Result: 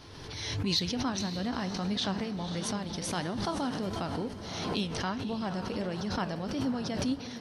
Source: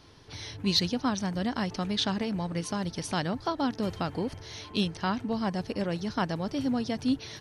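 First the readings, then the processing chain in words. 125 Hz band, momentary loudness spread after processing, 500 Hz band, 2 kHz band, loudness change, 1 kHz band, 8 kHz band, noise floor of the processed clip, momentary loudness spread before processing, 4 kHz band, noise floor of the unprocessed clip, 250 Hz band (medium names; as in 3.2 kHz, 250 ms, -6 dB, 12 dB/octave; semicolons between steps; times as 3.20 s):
-1.5 dB, 5 LU, -2.5 dB, -2.0 dB, -2.5 dB, -2.5 dB, +1.5 dB, -43 dBFS, 5 LU, -2.0 dB, -48 dBFS, -3.0 dB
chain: echo that smears into a reverb 527 ms, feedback 44%, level -11 dB; flange 1.5 Hz, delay 7.4 ms, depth 9.3 ms, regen +75%; swell ahead of each attack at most 34 dB/s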